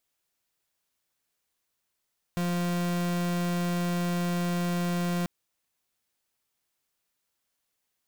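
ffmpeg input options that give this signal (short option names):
-f lavfi -i "aevalsrc='0.0398*(2*lt(mod(175*t,1),0.41)-1)':d=2.89:s=44100"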